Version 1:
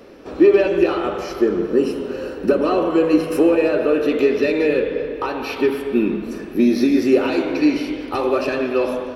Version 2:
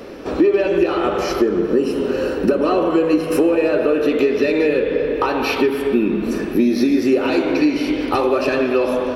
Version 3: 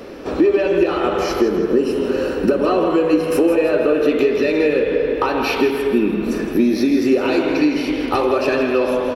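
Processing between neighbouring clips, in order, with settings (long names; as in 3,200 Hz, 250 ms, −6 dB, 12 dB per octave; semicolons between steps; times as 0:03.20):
downward compressor 3 to 1, threshold −24 dBFS, peak gain reduction 12 dB; level +8.5 dB
repeating echo 163 ms, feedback 42%, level −10.5 dB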